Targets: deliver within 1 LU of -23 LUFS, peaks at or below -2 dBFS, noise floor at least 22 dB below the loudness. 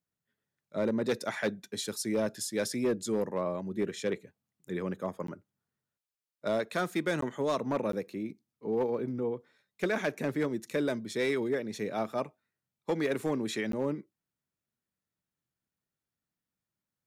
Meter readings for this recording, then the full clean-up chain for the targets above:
clipped 0.6%; flat tops at -22.5 dBFS; dropouts 4; longest dropout 13 ms; loudness -33.0 LUFS; peak -22.5 dBFS; loudness target -23.0 LUFS
-> clip repair -22.5 dBFS; interpolate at 5.27/7.21/7.92/13.72, 13 ms; gain +10 dB

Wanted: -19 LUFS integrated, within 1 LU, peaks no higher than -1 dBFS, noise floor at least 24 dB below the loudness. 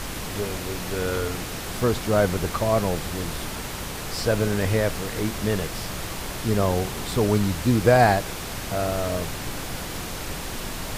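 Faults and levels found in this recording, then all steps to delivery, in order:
hum 60 Hz; harmonics up to 180 Hz; hum level -41 dBFS; noise floor -33 dBFS; noise floor target -49 dBFS; loudness -25.0 LUFS; peak -4.0 dBFS; loudness target -19.0 LUFS
-> de-hum 60 Hz, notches 3; noise print and reduce 16 dB; gain +6 dB; limiter -1 dBFS

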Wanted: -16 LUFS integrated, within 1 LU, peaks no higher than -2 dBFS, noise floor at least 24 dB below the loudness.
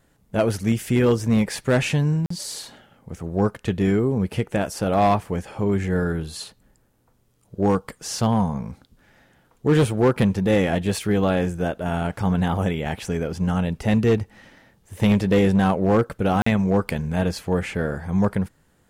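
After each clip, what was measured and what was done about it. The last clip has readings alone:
clipped 1.0%; flat tops at -12.0 dBFS; dropouts 2; longest dropout 44 ms; loudness -22.5 LUFS; peak -12.0 dBFS; loudness target -16.0 LUFS
-> clip repair -12 dBFS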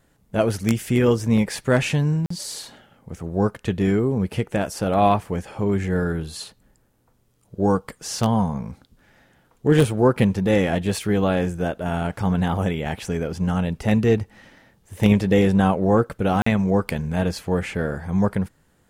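clipped 0.0%; dropouts 2; longest dropout 44 ms
-> interpolate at 2.26/16.42, 44 ms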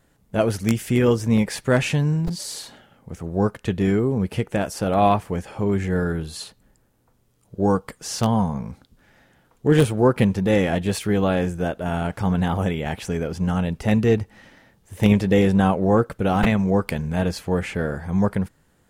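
dropouts 0; loudness -22.0 LUFS; peak -3.0 dBFS; loudness target -16.0 LUFS
-> gain +6 dB; limiter -2 dBFS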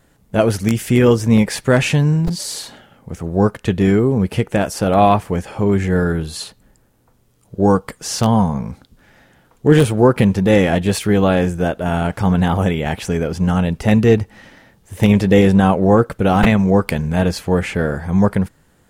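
loudness -16.0 LUFS; peak -2.0 dBFS; noise floor -56 dBFS

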